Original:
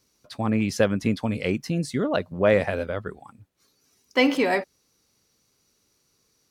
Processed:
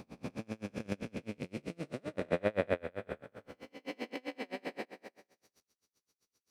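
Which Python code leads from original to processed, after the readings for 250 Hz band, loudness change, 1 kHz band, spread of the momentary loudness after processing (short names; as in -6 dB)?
-16.0 dB, -15.5 dB, -14.5 dB, 14 LU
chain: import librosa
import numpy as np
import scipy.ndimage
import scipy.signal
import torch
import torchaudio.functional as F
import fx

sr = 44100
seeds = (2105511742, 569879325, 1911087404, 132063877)

y = fx.spec_blur(x, sr, span_ms=735.0)
y = fx.low_shelf(y, sr, hz=170.0, db=-7.5)
y = fx.level_steps(y, sr, step_db=10)
y = y * 10.0 ** (-33 * (0.5 - 0.5 * np.cos(2.0 * np.pi * 7.7 * np.arange(len(y)) / sr)) / 20.0)
y = y * 10.0 ** (4.5 / 20.0)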